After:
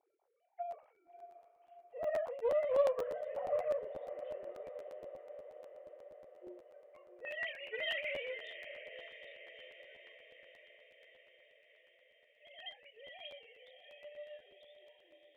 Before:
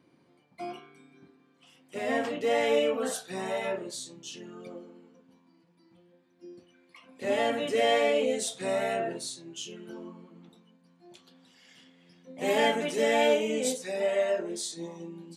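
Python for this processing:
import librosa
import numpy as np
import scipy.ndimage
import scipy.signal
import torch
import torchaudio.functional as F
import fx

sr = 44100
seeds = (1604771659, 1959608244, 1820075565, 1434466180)

y = fx.sine_speech(x, sr)
y = fx.bandpass_q(y, sr, hz=fx.steps((0.0, 750.0), (7.25, 2200.0), (8.47, 6600.0)), q=3.3)
y = fx.doubler(y, sr, ms=25.0, db=-9.5)
y = fx.echo_diffused(y, sr, ms=634, feedback_pct=66, wet_db=-11)
y = fx.buffer_crackle(y, sr, first_s=0.7, period_s=0.12, block=512, kind='repeat')
y = fx.doppler_dist(y, sr, depth_ms=0.23)
y = y * 10.0 ** (2.0 / 20.0)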